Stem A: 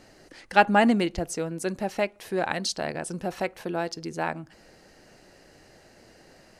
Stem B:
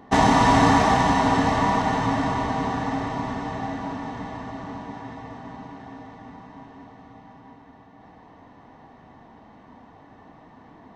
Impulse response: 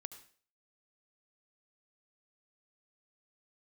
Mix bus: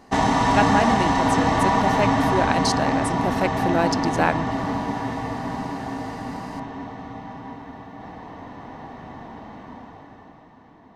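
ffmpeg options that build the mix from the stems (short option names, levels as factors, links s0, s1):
-filter_complex "[0:a]volume=0.668[s0];[1:a]volume=0.75[s1];[s0][s1]amix=inputs=2:normalize=0,dynaudnorm=f=110:g=21:m=4.47"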